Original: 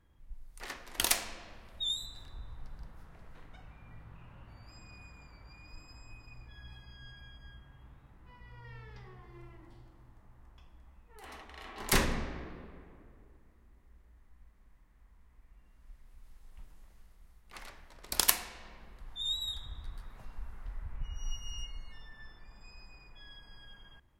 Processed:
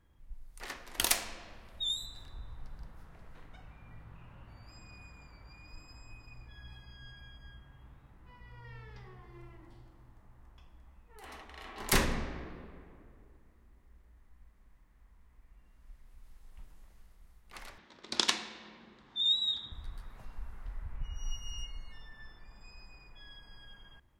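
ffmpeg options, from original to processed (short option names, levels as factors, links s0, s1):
-filter_complex "[0:a]asettb=1/sr,asplit=3[s0][s1][s2];[s0]atrim=end=17.784[s3];[s1]atrim=start=17.78:end=19.72,asetpts=PTS-STARTPTS,afade=t=in:d=0.004:c=qsin,afade=t=out:st=1.936:d=0.004:c=qsin,highpass=150,equalizer=f=220:t=q:w=4:g=8,equalizer=f=340:t=q:w=4:g=7,equalizer=f=670:t=q:w=4:g=-4,equalizer=f=3600:t=q:w=4:g=7,lowpass=f=6500:w=0.5412,lowpass=f=6500:w=1.3066[s4];[s2]atrim=start=19.716[s5];[s3][s4]acrossfade=d=0.004:c1=hsin:c2=qsin[s6];[s6][s5]acrossfade=d=0.004:c1=qsin:c2=hsin"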